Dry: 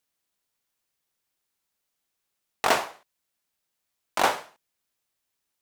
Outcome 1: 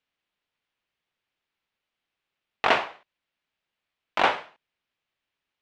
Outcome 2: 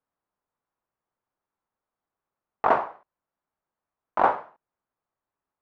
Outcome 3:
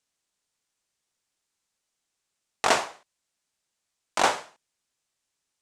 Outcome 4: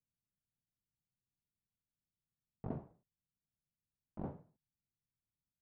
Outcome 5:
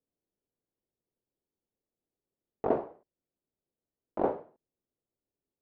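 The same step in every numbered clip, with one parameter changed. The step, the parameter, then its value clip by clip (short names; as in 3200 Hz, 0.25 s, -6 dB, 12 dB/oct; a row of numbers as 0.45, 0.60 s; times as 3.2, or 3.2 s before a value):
synth low-pass, frequency: 2900, 1100, 7900, 150, 420 Hz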